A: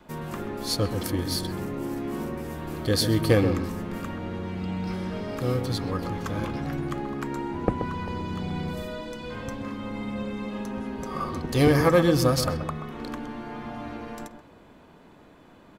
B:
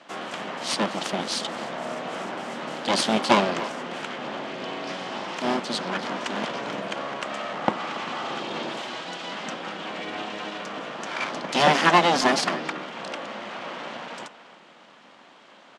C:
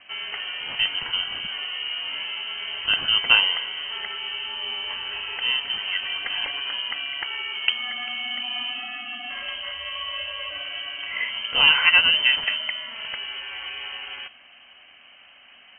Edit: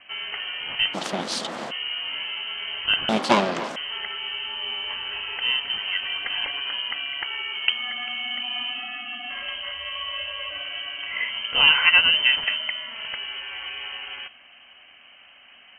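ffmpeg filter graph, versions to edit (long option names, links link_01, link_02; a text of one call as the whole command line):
ffmpeg -i take0.wav -i take1.wav -i take2.wav -filter_complex "[1:a]asplit=2[link_01][link_02];[2:a]asplit=3[link_03][link_04][link_05];[link_03]atrim=end=0.95[link_06];[link_01]atrim=start=0.93:end=1.72[link_07];[link_04]atrim=start=1.7:end=3.092[link_08];[link_02]atrim=start=3.088:end=3.762[link_09];[link_05]atrim=start=3.758[link_10];[link_06][link_07]acrossfade=duration=0.02:curve1=tri:curve2=tri[link_11];[link_11][link_08]acrossfade=duration=0.02:curve1=tri:curve2=tri[link_12];[link_12][link_09]acrossfade=duration=0.004:curve1=hsin:curve2=hsin[link_13];[link_13][link_10]acrossfade=duration=0.004:curve1=hsin:curve2=hsin" out.wav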